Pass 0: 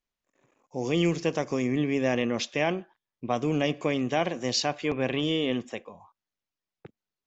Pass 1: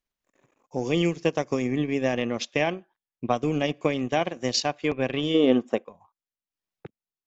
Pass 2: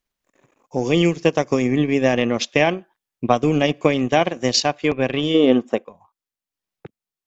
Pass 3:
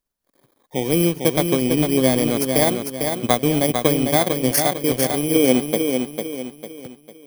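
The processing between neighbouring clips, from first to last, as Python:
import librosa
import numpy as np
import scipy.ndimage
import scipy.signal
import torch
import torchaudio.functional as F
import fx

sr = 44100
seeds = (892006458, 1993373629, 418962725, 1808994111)

y1 = fx.transient(x, sr, attack_db=5, sustain_db=-9)
y1 = fx.spec_box(y1, sr, start_s=5.35, length_s=0.49, low_hz=210.0, high_hz=1600.0, gain_db=9)
y2 = fx.rider(y1, sr, range_db=10, speed_s=2.0)
y2 = y2 * librosa.db_to_amplitude(7.0)
y3 = fx.bit_reversed(y2, sr, seeds[0], block=16)
y3 = fx.echo_feedback(y3, sr, ms=450, feedback_pct=39, wet_db=-5.5)
y3 = y3 * librosa.db_to_amplitude(-1.0)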